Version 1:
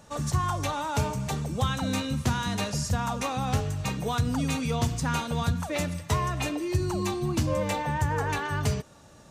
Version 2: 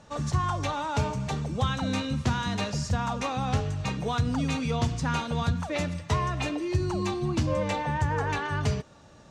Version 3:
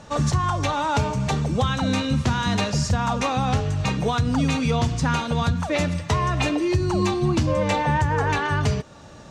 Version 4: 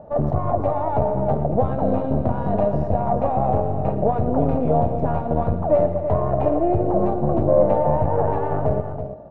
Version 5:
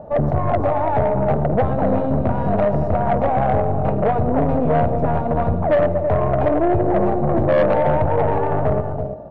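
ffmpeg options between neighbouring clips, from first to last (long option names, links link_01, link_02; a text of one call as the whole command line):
ffmpeg -i in.wav -af "lowpass=5800" out.wav
ffmpeg -i in.wav -af "alimiter=limit=-21dB:level=0:latency=1:release=334,volume=9dB" out.wav
ffmpeg -i in.wav -filter_complex "[0:a]aeval=exprs='0.266*(cos(1*acos(clip(val(0)/0.266,-1,1)))-cos(1*PI/2))+0.0596*(cos(4*acos(clip(val(0)/0.266,-1,1)))-cos(4*PI/2))':channel_layout=same,lowpass=frequency=650:width_type=q:width=4.9,asplit=2[link_01][link_02];[link_02]aecho=0:1:116|227|331:0.211|0.211|0.335[link_03];[link_01][link_03]amix=inputs=2:normalize=0,volume=-2.5dB" out.wav
ffmpeg -i in.wav -af "asoftclip=type=tanh:threshold=-15.5dB,volume=5dB" out.wav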